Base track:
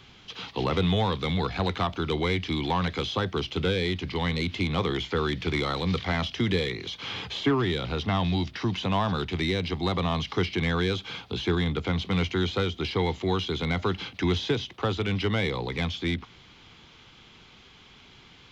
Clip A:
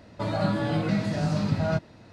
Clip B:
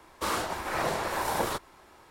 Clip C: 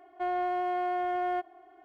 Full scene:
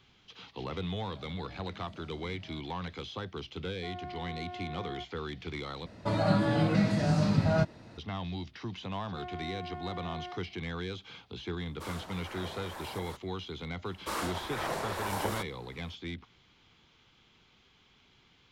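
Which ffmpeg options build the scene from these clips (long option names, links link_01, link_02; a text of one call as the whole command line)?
ffmpeg -i bed.wav -i cue0.wav -i cue1.wav -i cue2.wav -filter_complex "[1:a]asplit=2[link_01][link_02];[3:a]asplit=2[link_03][link_04];[2:a]asplit=2[link_05][link_06];[0:a]volume=-11.5dB[link_07];[link_01]acompressor=threshold=-36dB:ratio=6:attack=3.2:release=140:knee=1:detection=peak[link_08];[link_04]acrossover=split=560[link_09][link_10];[link_10]adelay=40[link_11];[link_09][link_11]amix=inputs=2:normalize=0[link_12];[link_05]alimiter=limit=-20dB:level=0:latency=1:release=250[link_13];[link_07]asplit=2[link_14][link_15];[link_14]atrim=end=5.864[link_16];[link_02]atrim=end=2.12,asetpts=PTS-STARTPTS,volume=-0.5dB[link_17];[link_15]atrim=start=7.976[link_18];[link_08]atrim=end=2.12,asetpts=PTS-STARTPTS,volume=-14.5dB,afade=type=in:duration=0.004:curve=hsin,afade=type=out:start_time=2.116:duration=0.004:curve=hsin,adelay=830[link_19];[link_03]atrim=end=1.84,asetpts=PTS-STARTPTS,volume=-13dB,afade=type=in:duration=0.004:curve=hsin,afade=type=out:start_time=1.836:duration=0.004:curve=hsin,adelay=3630[link_20];[link_12]atrim=end=1.84,asetpts=PTS-STARTPTS,volume=-10.5dB,afade=type=in:duration=0.004:curve=hsin,afade=type=out:start_time=1.836:duration=0.004:curve=hsin,adelay=8920[link_21];[link_13]atrim=end=2.1,asetpts=PTS-STARTPTS,volume=-12.5dB,afade=type=in:duration=0.004:curve=hsin,afade=type=out:start_time=2.096:duration=0.004:curve=hsin,adelay=11590[link_22];[link_06]atrim=end=2.1,asetpts=PTS-STARTPTS,volume=-5dB,afade=type=in:duration=0.004:curve=hsin,afade=type=out:start_time=2.096:duration=0.004:curve=hsin,adelay=13850[link_23];[link_16][link_17]acrossfade=duration=0.004:curve1=hsin:curve2=hsin[link_24];[link_24][link_18]acrossfade=duration=0.004:curve1=hsin:curve2=hsin[link_25];[link_25][link_19][link_20][link_21][link_22][link_23]amix=inputs=6:normalize=0" out.wav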